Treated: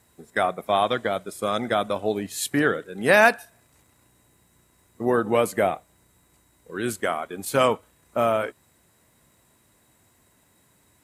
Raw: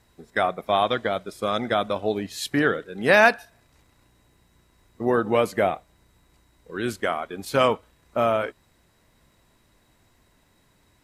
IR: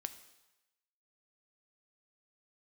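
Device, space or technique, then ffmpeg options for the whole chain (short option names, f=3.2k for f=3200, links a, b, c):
budget condenser microphone: -af "highpass=75,highshelf=f=6.5k:t=q:w=1.5:g=6.5"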